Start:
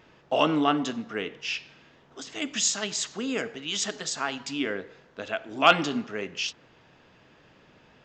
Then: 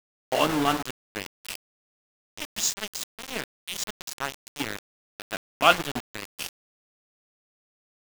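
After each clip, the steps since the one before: small samples zeroed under -24 dBFS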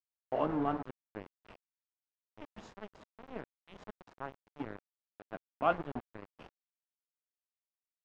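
low-pass 1 kHz 12 dB/octave; trim -7 dB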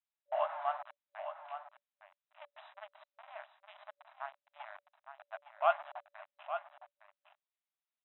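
FFT band-pass 580–4000 Hz; delay 861 ms -9.5 dB; trim +1 dB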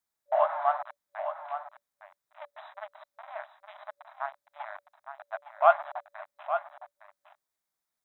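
peaking EQ 2.8 kHz -11.5 dB 0.51 oct; trim +9 dB

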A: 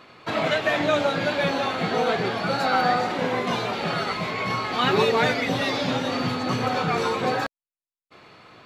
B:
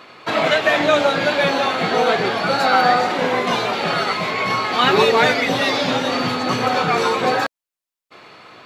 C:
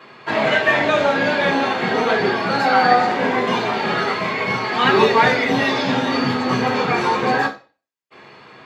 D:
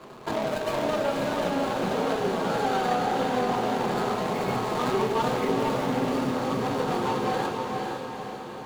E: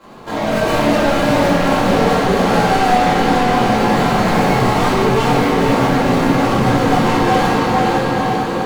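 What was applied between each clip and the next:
bass shelf 170 Hz -11 dB; trim +7 dB
reverberation RT60 0.35 s, pre-delay 3 ms, DRR -1.5 dB; trim -11.5 dB
median filter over 25 samples; compression 2.5:1, threshold -32 dBFS, peak gain reduction 14.5 dB; echo that smears into a reverb 483 ms, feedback 53%, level -3 dB; trim +2 dB
level rider gain up to 14 dB; saturation -18.5 dBFS, distortion -8 dB; simulated room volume 190 m³, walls mixed, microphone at 2.2 m; trim -1.5 dB

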